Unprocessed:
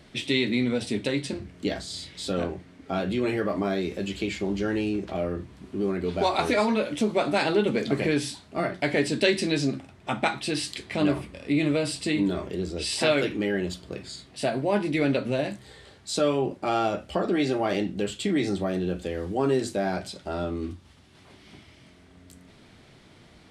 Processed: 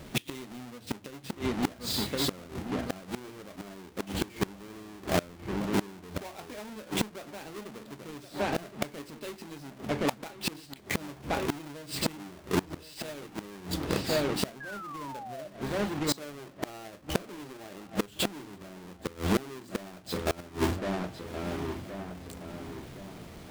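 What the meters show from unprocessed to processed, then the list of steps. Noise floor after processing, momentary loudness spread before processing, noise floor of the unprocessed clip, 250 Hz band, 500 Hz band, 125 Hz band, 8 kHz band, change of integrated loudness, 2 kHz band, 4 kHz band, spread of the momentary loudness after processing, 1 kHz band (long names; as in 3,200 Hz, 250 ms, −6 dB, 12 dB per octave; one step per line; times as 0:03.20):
−51 dBFS, 10 LU, −54 dBFS, −7.5 dB, −9.0 dB, −5.0 dB, −2.0 dB, −7.5 dB, −7.0 dB, −4.5 dB, 14 LU, −6.5 dB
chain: each half-wave held at its own peak
feedback echo with a low-pass in the loop 1,070 ms, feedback 40%, low-pass 2,700 Hz, level −11.5 dB
sound drawn into the spectrogram fall, 0:14.60–0:15.48, 590–1,700 Hz −18 dBFS
mains-hum notches 50/100 Hz
gate with flip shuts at −18 dBFS, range −25 dB
level +1.5 dB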